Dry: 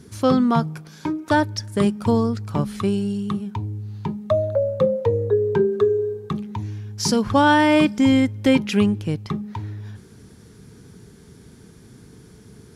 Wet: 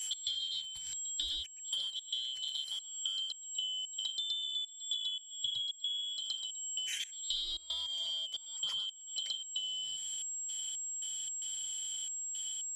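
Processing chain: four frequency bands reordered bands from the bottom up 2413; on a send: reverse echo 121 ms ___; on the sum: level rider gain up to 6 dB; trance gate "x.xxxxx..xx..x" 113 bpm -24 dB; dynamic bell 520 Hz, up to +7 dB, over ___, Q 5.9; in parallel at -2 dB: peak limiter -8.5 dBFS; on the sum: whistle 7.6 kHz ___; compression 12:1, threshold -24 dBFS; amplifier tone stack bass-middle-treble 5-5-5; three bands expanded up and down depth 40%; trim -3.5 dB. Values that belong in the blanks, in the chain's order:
-4.5 dB, -53 dBFS, -27 dBFS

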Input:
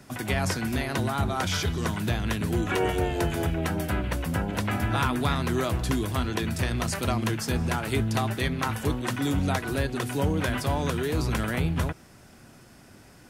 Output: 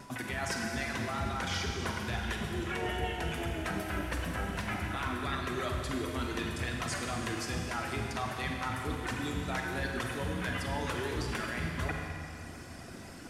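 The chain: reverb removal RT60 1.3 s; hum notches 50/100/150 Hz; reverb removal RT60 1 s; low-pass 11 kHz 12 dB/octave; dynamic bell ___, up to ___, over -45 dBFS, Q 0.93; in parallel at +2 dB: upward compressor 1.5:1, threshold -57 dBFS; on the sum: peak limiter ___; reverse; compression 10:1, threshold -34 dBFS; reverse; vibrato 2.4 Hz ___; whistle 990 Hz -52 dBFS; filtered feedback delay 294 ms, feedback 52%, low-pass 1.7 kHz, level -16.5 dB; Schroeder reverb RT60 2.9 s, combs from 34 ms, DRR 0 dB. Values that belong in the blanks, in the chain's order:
2 kHz, +5 dB, -9.5 dBFS, 34 cents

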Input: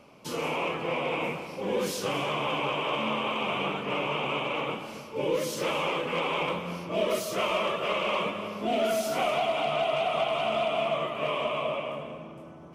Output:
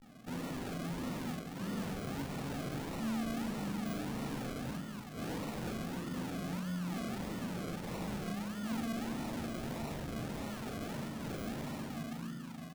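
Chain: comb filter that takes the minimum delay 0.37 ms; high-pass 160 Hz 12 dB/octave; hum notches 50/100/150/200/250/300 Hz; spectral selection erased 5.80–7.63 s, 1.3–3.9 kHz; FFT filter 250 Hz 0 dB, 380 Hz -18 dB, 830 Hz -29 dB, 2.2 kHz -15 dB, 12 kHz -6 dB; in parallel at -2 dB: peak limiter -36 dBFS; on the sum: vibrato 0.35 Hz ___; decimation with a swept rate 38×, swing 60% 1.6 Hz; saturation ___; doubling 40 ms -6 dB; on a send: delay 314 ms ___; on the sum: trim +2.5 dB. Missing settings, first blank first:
65 cents, -38.5 dBFS, -21 dB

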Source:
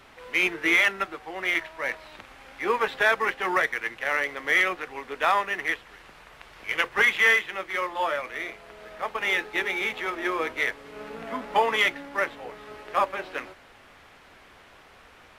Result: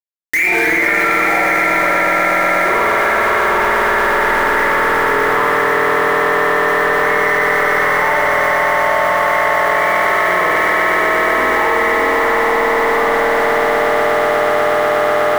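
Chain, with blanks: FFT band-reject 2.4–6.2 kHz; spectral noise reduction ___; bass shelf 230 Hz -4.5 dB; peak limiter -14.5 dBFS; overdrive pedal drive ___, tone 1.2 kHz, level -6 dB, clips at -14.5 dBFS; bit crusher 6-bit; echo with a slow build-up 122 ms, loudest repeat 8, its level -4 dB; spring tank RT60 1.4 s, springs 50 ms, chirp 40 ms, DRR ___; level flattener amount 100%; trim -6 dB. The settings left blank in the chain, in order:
24 dB, 25 dB, -7.5 dB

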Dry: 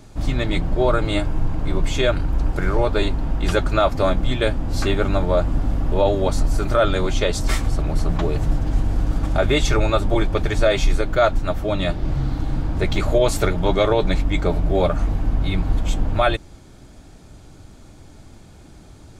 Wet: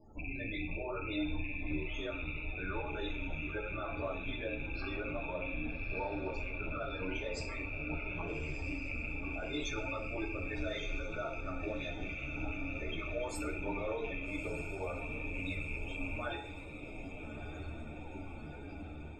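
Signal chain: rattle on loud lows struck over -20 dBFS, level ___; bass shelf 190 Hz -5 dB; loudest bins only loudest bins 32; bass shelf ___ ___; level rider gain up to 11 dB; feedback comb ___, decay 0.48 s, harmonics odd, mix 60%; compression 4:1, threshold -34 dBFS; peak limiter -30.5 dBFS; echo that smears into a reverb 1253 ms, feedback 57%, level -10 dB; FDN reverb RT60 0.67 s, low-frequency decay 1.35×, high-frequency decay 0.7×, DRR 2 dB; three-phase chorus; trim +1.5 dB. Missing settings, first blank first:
-9 dBFS, 480 Hz, -5.5 dB, 76 Hz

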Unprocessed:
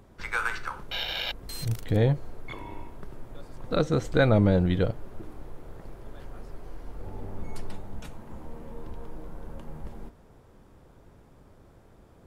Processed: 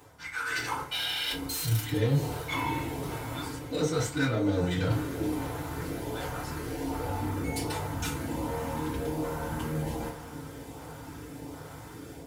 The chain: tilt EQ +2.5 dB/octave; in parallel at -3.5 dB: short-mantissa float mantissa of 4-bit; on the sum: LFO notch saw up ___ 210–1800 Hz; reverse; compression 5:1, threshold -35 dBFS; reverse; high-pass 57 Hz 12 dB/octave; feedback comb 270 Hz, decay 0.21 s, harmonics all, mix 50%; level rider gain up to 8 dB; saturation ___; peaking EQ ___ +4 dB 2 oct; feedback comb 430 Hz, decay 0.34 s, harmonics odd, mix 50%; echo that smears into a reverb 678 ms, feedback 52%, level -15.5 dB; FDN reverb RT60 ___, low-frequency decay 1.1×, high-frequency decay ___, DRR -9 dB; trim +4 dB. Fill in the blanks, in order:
1.3 Hz, -32.5 dBFS, 75 Hz, 0.35 s, 0.6×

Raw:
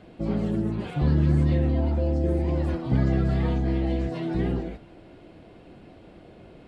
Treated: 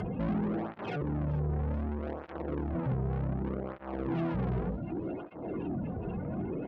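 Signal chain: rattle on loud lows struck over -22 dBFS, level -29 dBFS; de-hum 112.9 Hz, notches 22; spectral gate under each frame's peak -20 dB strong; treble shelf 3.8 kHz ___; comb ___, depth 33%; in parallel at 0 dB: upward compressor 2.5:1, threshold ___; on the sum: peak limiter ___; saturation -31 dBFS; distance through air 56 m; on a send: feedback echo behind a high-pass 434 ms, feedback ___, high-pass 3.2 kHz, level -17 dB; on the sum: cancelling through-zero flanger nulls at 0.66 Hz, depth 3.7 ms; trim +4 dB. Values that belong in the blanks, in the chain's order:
-4 dB, 0.8 ms, -23 dBFS, -14 dBFS, 71%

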